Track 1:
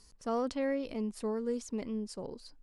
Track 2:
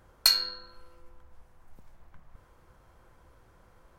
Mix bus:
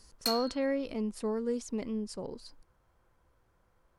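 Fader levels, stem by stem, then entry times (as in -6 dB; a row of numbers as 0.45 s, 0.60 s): +1.5 dB, -11.0 dB; 0.00 s, 0.00 s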